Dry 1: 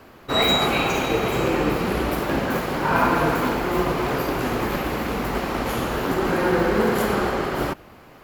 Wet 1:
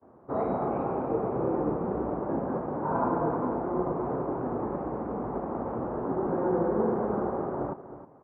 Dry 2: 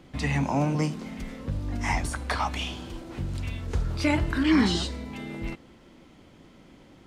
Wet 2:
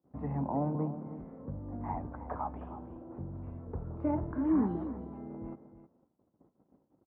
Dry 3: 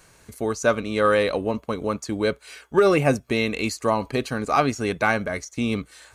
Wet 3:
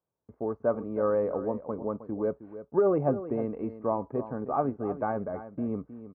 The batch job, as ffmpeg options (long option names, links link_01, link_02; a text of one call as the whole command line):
ffmpeg -i in.wav -filter_complex "[0:a]lowpass=frequency=1000:width=0.5412,lowpass=frequency=1000:width=1.3066,agate=range=-24dB:threshold=-50dB:ratio=16:detection=peak,highpass=57,lowshelf=frequency=91:gain=-8.5,asplit=2[link_01][link_02];[link_02]aecho=0:1:314:0.224[link_03];[link_01][link_03]amix=inputs=2:normalize=0,volume=-5.5dB" out.wav